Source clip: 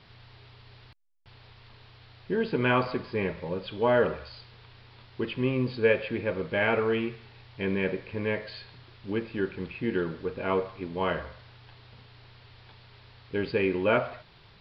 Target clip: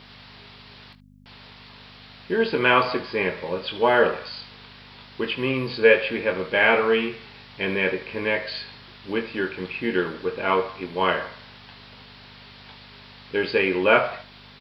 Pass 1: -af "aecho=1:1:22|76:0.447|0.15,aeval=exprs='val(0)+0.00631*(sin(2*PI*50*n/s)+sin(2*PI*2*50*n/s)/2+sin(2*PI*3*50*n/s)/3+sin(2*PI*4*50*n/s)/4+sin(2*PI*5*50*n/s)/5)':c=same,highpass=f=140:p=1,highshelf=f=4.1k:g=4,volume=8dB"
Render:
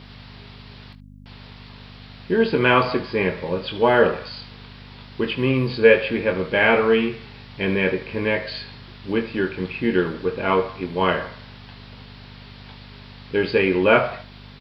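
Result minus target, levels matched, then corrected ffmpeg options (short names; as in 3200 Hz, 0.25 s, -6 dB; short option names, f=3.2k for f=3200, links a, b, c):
125 Hz band +6.0 dB
-af "aecho=1:1:22|76:0.447|0.15,aeval=exprs='val(0)+0.00631*(sin(2*PI*50*n/s)+sin(2*PI*2*50*n/s)/2+sin(2*PI*3*50*n/s)/3+sin(2*PI*4*50*n/s)/4+sin(2*PI*5*50*n/s)/5)':c=same,highpass=f=490:p=1,highshelf=f=4.1k:g=4,volume=8dB"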